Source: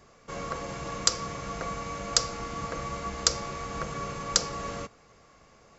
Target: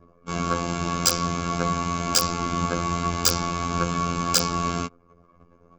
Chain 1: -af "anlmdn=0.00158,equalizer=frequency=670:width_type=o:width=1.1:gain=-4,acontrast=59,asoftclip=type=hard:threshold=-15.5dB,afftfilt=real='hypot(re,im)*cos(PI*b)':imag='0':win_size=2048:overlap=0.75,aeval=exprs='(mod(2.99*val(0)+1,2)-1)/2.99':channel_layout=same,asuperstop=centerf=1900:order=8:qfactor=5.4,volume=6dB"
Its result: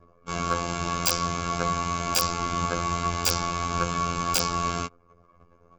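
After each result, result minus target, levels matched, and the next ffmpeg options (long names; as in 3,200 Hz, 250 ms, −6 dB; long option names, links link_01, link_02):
hard clipping: distortion +21 dB; 250 Hz band −3.0 dB
-af "anlmdn=0.00158,equalizer=frequency=670:width_type=o:width=1.1:gain=-4,acontrast=59,asoftclip=type=hard:threshold=-4.5dB,afftfilt=real='hypot(re,im)*cos(PI*b)':imag='0':win_size=2048:overlap=0.75,aeval=exprs='(mod(2.99*val(0)+1,2)-1)/2.99':channel_layout=same,asuperstop=centerf=1900:order=8:qfactor=5.4,volume=6dB"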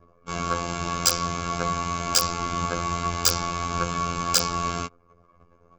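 250 Hz band −4.5 dB
-af "anlmdn=0.00158,equalizer=frequency=670:width_type=o:width=1.1:gain=-4,acontrast=59,asoftclip=type=hard:threshold=-4.5dB,afftfilt=real='hypot(re,im)*cos(PI*b)':imag='0':win_size=2048:overlap=0.75,aeval=exprs='(mod(2.99*val(0)+1,2)-1)/2.99':channel_layout=same,asuperstop=centerf=1900:order=8:qfactor=5.4,equalizer=frequency=230:width_type=o:width=1.5:gain=6.5,volume=6dB"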